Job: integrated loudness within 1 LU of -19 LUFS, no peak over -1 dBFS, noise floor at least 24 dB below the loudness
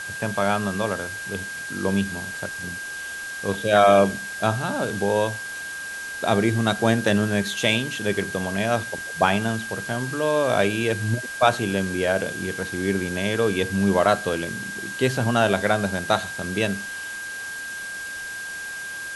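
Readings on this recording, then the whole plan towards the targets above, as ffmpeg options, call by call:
steady tone 1600 Hz; tone level -31 dBFS; noise floor -33 dBFS; noise floor target -48 dBFS; loudness -24.0 LUFS; peak -3.5 dBFS; loudness target -19.0 LUFS
-> -af "bandreject=f=1.6k:w=30"
-af "afftdn=nr=15:nf=-33"
-af "volume=5dB,alimiter=limit=-1dB:level=0:latency=1"

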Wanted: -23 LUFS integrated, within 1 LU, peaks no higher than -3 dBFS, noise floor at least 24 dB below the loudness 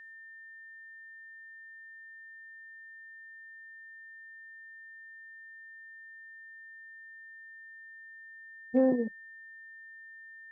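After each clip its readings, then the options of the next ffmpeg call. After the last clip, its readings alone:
steady tone 1800 Hz; tone level -47 dBFS; loudness -40.0 LUFS; peak -15.5 dBFS; loudness target -23.0 LUFS
-> -af "bandreject=f=1.8k:w=30"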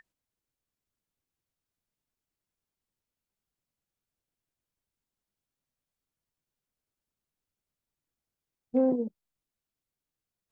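steady tone none; loudness -29.0 LUFS; peak -15.0 dBFS; loudness target -23.0 LUFS
-> -af "volume=6dB"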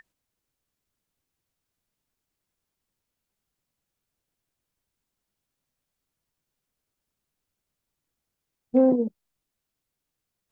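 loudness -23.0 LUFS; peak -9.0 dBFS; noise floor -84 dBFS

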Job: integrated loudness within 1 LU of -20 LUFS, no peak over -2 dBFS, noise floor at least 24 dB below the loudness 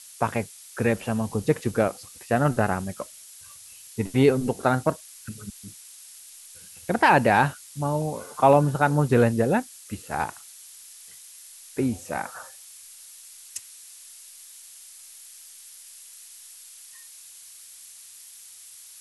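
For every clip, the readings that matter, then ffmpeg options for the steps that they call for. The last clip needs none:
noise floor -47 dBFS; noise floor target -48 dBFS; loudness -24.0 LUFS; peak -4.5 dBFS; loudness target -20.0 LUFS
-> -af "afftdn=nr=6:nf=-47"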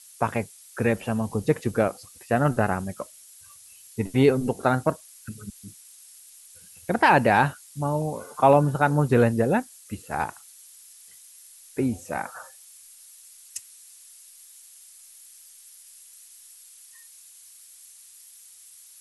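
noise floor -50 dBFS; loudness -24.0 LUFS; peak -4.5 dBFS; loudness target -20.0 LUFS
-> -af "volume=4dB,alimiter=limit=-2dB:level=0:latency=1"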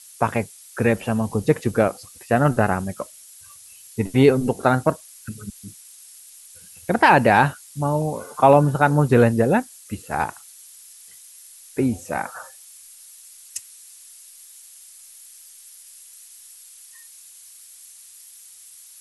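loudness -20.0 LUFS; peak -2.0 dBFS; noise floor -46 dBFS

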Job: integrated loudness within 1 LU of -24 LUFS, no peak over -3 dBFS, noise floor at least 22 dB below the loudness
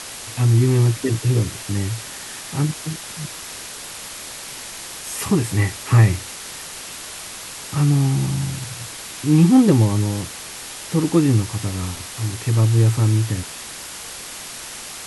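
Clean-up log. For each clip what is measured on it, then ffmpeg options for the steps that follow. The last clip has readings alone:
noise floor -35 dBFS; noise floor target -42 dBFS; loudness -20.0 LUFS; peak -2.0 dBFS; loudness target -24.0 LUFS
-> -af "afftdn=nr=7:nf=-35"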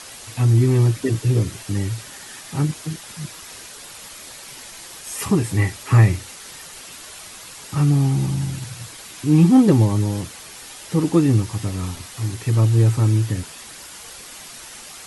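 noise floor -39 dBFS; noise floor target -42 dBFS
-> -af "afftdn=nr=6:nf=-39"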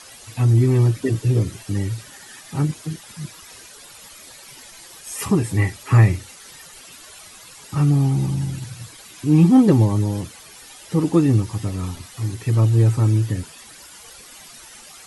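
noise floor -43 dBFS; loudness -19.5 LUFS; peak -2.0 dBFS; loudness target -24.0 LUFS
-> -af "volume=-4.5dB"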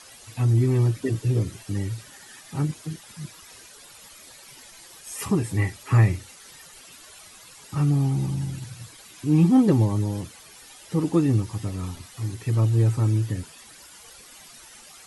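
loudness -24.0 LUFS; peak -6.5 dBFS; noise floor -48 dBFS

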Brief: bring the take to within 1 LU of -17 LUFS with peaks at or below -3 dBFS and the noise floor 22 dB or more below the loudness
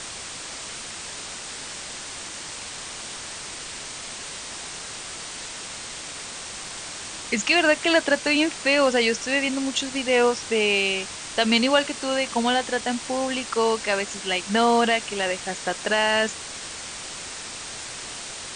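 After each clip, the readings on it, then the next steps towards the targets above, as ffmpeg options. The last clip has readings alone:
noise floor -36 dBFS; noise floor target -47 dBFS; loudness -24.5 LUFS; peak -6.0 dBFS; loudness target -17.0 LUFS
-> -af "afftdn=nr=11:nf=-36"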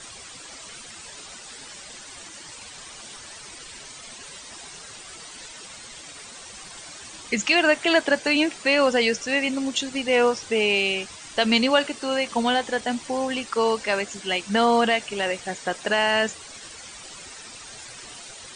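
noise floor -42 dBFS; noise floor target -45 dBFS
-> -af "afftdn=nr=6:nf=-42"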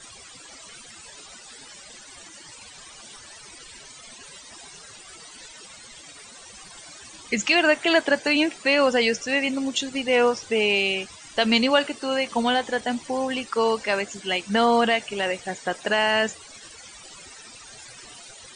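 noise floor -45 dBFS; loudness -22.5 LUFS; peak -6.0 dBFS; loudness target -17.0 LUFS
-> -af "volume=5.5dB,alimiter=limit=-3dB:level=0:latency=1"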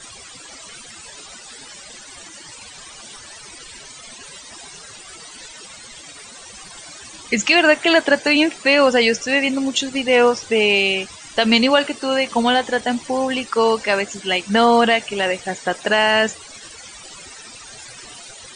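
loudness -17.0 LUFS; peak -3.0 dBFS; noise floor -40 dBFS

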